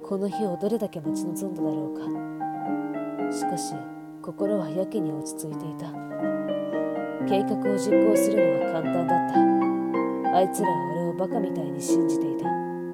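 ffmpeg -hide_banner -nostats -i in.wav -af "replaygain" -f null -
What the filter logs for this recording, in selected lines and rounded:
track_gain = +4.6 dB
track_peak = 0.249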